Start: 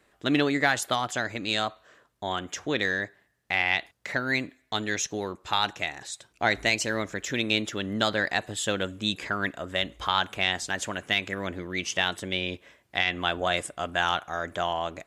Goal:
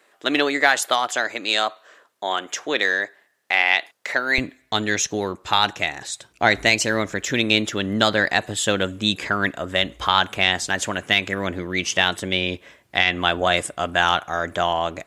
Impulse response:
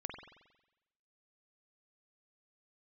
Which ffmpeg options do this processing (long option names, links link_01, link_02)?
-af "asetnsamples=nb_out_samples=441:pad=0,asendcmd='4.38 highpass f 47',highpass=410,volume=7dB"